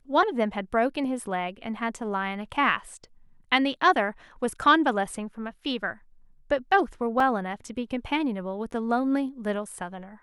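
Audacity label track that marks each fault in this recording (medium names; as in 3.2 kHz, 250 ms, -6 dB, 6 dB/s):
7.200000	7.200000	dropout 3 ms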